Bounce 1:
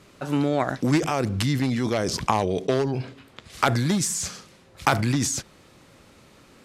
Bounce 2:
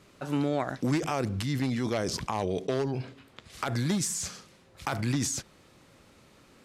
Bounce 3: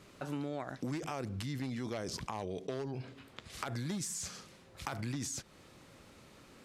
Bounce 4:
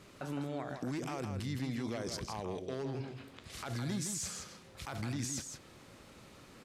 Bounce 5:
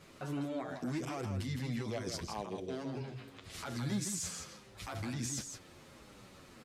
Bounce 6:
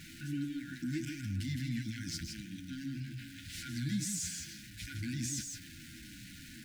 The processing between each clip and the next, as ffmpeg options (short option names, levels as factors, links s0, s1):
-af "alimiter=limit=0.251:level=0:latency=1:release=158,volume=0.562"
-af "acompressor=threshold=0.01:ratio=2.5"
-af "alimiter=level_in=2.11:limit=0.0631:level=0:latency=1:release=30,volume=0.473,aecho=1:1:161:0.473,volume=1.12"
-filter_complex "[0:a]asplit=2[s0][s1];[s1]adelay=8.7,afreqshift=-1.4[s2];[s0][s2]amix=inputs=2:normalize=1,volume=1.41"
-af "aeval=exprs='val(0)+0.5*0.00447*sgn(val(0))':c=same,afftfilt=real='re*(1-between(b*sr/4096,340,1400))':imag='im*(1-between(b*sr/4096,340,1400))':win_size=4096:overlap=0.75"